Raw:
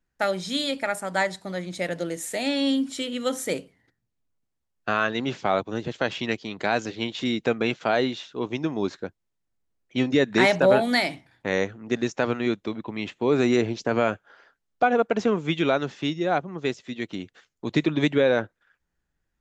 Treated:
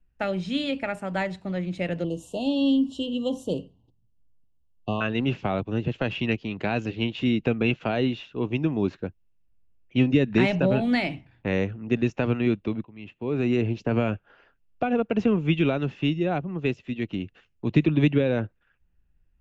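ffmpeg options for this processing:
-filter_complex "[0:a]asettb=1/sr,asplit=3[a][b][c];[a]atrim=end=2.044[d];[b]atrim=start=2.04:end=5.01,asetpts=PTS-STARTPTS,afade=t=in:d=0.004:c=qsin,afade=t=out:st=2.966:d=0.004:c=qsin,asuperstop=centerf=1800:order=20:qfactor=1.1[e];[c]atrim=start=5.006[f];[d][e]acrossfade=d=0.004:c1=hsin:c2=qsin[g];[g][f]acrossfade=d=0.004:c1=qsin:c2=hsin,asplit=2[h][i];[h]atrim=end=12.85,asetpts=PTS-STARTPTS,afade=t=out:st=12.846:d=0.004:c=hsin:silence=0.0841395[j];[i]atrim=start=12.85,asetpts=PTS-STARTPTS,afade=t=in:d=1.18:silence=0.0841395[k];[j][k]concat=n=2:v=0:a=1,aemphasis=mode=reproduction:type=riaa,acrossover=split=330|3000[l][m][n];[m]acompressor=threshold=-21dB:ratio=6[o];[l][o][n]amix=inputs=3:normalize=0,equalizer=f=2.7k:w=4:g=13.5,volume=-3.5dB"

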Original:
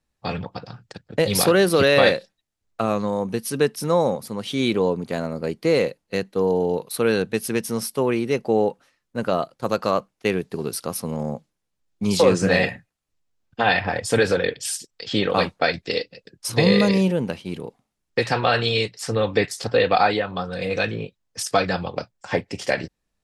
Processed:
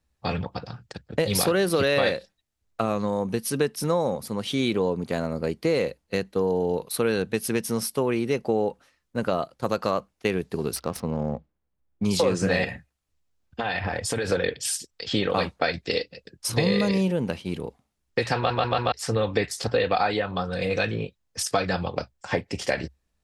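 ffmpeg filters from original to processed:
-filter_complex "[0:a]asettb=1/sr,asplit=3[a][b][c];[a]atrim=end=10.764[d];[b]atrim=start=10.76:end=12.05,asetpts=PTS-STARTPTS,afade=t=in:d=0.004:c=qsin,afade=t=out:st=1.286:d=0.004:c=qsin,adynamicsmooth=sensitivity=6:basefreq=1.9k[e];[c]atrim=start=12.046[f];[d][e]acrossfade=d=0.004:c1=hsin:c2=qsin[g];[g][f]acrossfade=d=0.004:c1=qsin:c2=hsin,asettb=1/sr,asplit=3[h][i][j];[h]atrim=end=12.644[k];[i]atrim=start=12.64:end=14.32,asetpts=PTS-STARTPTS,afade=t=in:d=0.004:c=qsin,afade=t=out:st=1.676:d=0.004:c=qsin,acompressor=threshold=-23dB:ratio=6:attack=3.2:release=140:knee=1:detection=peak[l];[j]atrim=start=14.316[m];[k][l]acrossfade=d=0.004:c1=hsin:c2=qsin[n];[n][m]acrossfade=d=0.004:c1=qsin:c2=hsin,asplit=5[o][p][q][r][s];[o]atrim=end=18.502[t];[p]atrim=start=18.358:end=18.502[u];[q]atrim=start=18.358:end=18.502[v];[r]atrim=start=18.358:end=18.502[w];[s]atrim=start=18.918[x];[t][u]acrossfade=d=0.004:c1=hsin:c2=hsin[y];[y][v]acrossfade=d=0.004:c1=hsin:c2=hsin[z];[z][w]acrossfade=d=0.004:c1=hsin:c2=hsin[aa];[aa][x]acrossfade=d=0.004:c1=hsin:c2=hsin,equalizer=f=67:w=3:g=12.5,acompressor=threshold=-21dB:ratio=2.5"

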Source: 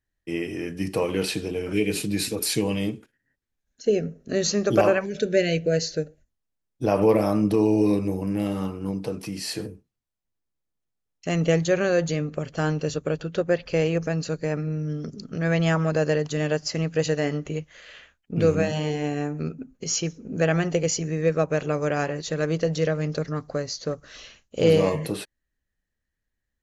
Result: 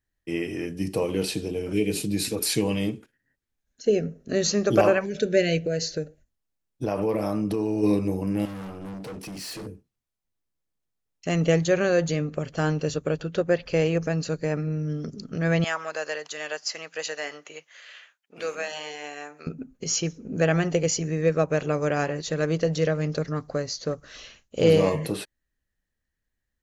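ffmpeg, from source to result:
-filter_complex "[0:a]asettb=1/sr,asplit=3[a][b][c];[a]atrim=end=0.664[d];[b]atrim=start=0.66:end=2.25,asetpts=PTS-STARTPTS,afade=t=in:d=0.004:c=qsin,afade=t=out:st=1.586:d=0.004:c=qsin,equalizer=f=1.6k:w=0.8:g=-7[e];[c]atrim=start=2.246[f];[d][e]acrossfade=d=0.004:c1=hsin:c2=qsin[g];[g][f]acrossfade=d=0.004:c1=qsin:c2=hsin,asplit=3[h][i][j];[h]afade=t=out:st=5.59:d=0.02[k];[i]acompressor=threshold=-23dB:ratio=3:attack=3.2:release=140:knee=1:detection=peak,afade=t=in:st=5.59:d=0.02,afade=t=out:st=7.82:d=0.02[l];[j]afade=t=in:st=7.82:d=0.02[m];[k][l][m]amix=inputs=3:normalize=0,asettb=1/sr,asplit=3[n][o][p];[n]atrim=end=8.454[q];[o]atrim=start=8.45:end=9.67,asetpts=PTS-STARTPTS,afade=t=in:d=0.004:c=qsin,afade=t=out:st=1.216:d=0.004:c=qsin,volume=34.5dB,asoftclip=hard,volume=-34.5dB[r];[p]atrim=start=9.666[s];[q][r]acrossfade=d=0.004:c1=hsin:c2=qsin[t];[t][s]acrossfade=d=0.004:c1=qsin:c2=hsin,asettb=1/sr,asplit=3[u][v][w];[u]atrim=end=15.644[x];[v]atrim=start=15.64:end=19.47,asetpts=PTS-STARTPTS,afade=t=in:d=0.004:c=qsin,afade=t=out:st=3.826:d=0.004:c=qsin,highpass=870[y];[w]atrim=start=19.466[z];[x][y]acrossfade=d=0.004:c1=hsin:c2=qsin[aa];[aa][z]acrossfade=d=0.004:c1=qsin:c2=hsin"

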